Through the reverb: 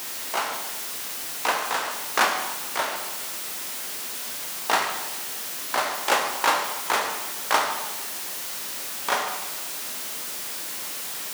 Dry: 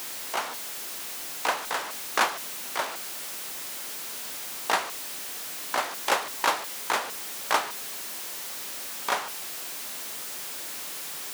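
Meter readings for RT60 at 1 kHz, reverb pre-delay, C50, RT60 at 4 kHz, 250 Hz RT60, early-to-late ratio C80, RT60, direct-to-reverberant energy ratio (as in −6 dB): 1.2 s, 9 ms, 5.5 dB, 1.1 s, 1.2 s, 7.5 dB, 1.2 s, 3.0 dB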